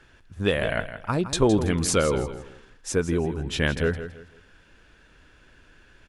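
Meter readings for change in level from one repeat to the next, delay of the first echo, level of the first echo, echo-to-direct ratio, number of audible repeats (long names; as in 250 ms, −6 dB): −10.5 dB, 164 ms, −11.5 dB, −11.0 dB, 3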